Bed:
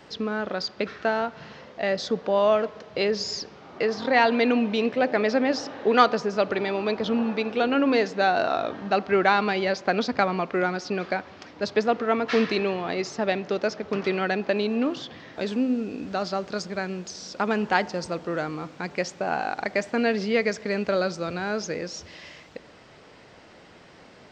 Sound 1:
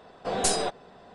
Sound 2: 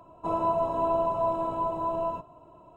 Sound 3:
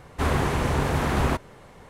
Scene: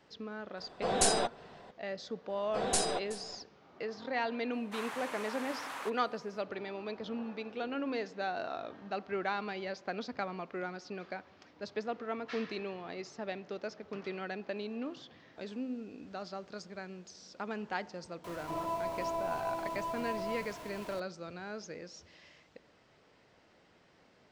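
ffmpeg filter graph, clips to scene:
ffmpeg -i bed.wav -i cue0.wav -i cue1.wav -i cue2.wav -filter_complex "[1:a]asplit=2[link_01][link_02];[0:a]volume=-14.5dB[link_03];[link_02]aecho=1:1:374:0.133[link_04];[3:a]highpass=frequency=830:width=0.5412,highpass=frequency=830:width=1.3066[link_05];[2:a]aeval=exprs='val(0)+0.5*0.0282*sgn(val(0))':channel_layout=same[link_06];[link_01]atrim=end=1.14,asetpts=PTS-STARTPTS,volume=-2.5dB,afade=type=in:duration=0.004:curve=hsin,afade=type=out:start_time=1.136:duration=0.004:curve=hsin,adelay=570[link_07];[link_04]atrim=end=1.14,asetpts=PTS-STARTPTS,volume=-5.5dB,afade=type=in:duration=0.004:curve=hsin,afade=type=out:start_time=1.136:duration=0.004:curve=hsin,adelay=2290[link_08];[link_05]atrim=end=1.89,asetpts=PTS-STARTPTS,volume=-12dB,afade=type=in:duration=0.004:curve=hsin,afade=type=out:start_time=1.886:duration=0.004:curve=hsin,adelay=199773S[link_09];[link_06]atrim=end=2.76,asetpts=PTS-STARTPTS,volume=-11.5dB,afade=type=in:duration=0.004:curve=hsin,afade=type=out:start_time=2.756:duration=0.004:curve=hsin,adelay=18240[link_10];[link_03][link_07][link_08][link_09][link_10]amix=inputs=5:normalize=0" out.wav

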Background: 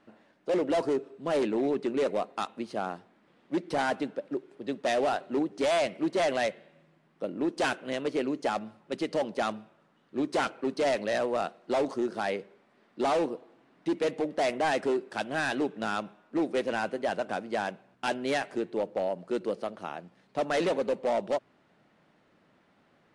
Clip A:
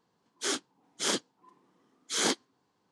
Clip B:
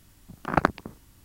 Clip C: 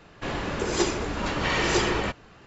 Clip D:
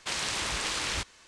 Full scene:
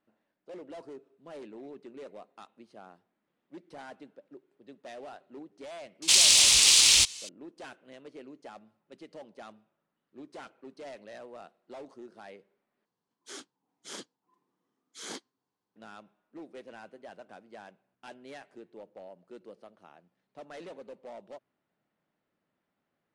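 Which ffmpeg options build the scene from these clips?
ffmpeg -i bed.wav -i cue0.wav -i cue1.wav -i cue2.wav -i cue3.wav -filter_complex "[0:a]volume=-17.5dB[link_01];[4:a]aexciter=amount=4:drive=9.7:freq=2400[link_02];[link_01]asplit=2[link_03][link_04];[link_03]atrim=end=12.854[link_05];[1:a]atrim=end=2.91,asetpts=PTS-STARTPTS,volume=-13.5dB[link_06];[link_04]atrim=start=15.756[link_07];[link_02]atrim=end=1.27,asetpts=PTS-STARTPTS,volume=-4dB,afade=type=in:duration=0.004:curve=hsin,afade=type=out:start_time=1.266:duration=0.004:curve=hsin,adelay=6020[link_08];[link_05][link_06]acrossfade=duration=0.004:curve1=hsin:curve2=hsin[link_09];[link_09][link_07]acrossfade=duration=0.004:curve1=hsin:curve2=hsin[link_10];[link_10][link_08]amix=inputs=2:normalize=0" out.wav

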